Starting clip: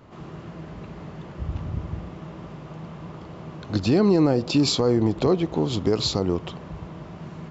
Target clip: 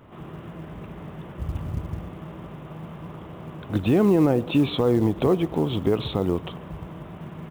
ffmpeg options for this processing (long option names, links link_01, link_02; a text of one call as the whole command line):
ffmpeg -i in.wav -af "aresample=8000,aresample=44100,aecho=1:1:140|280|420:0.0631|0.0303|0.0145,acrusher=bits=8:mode=log:mix=0:aa=0.000001" out.wav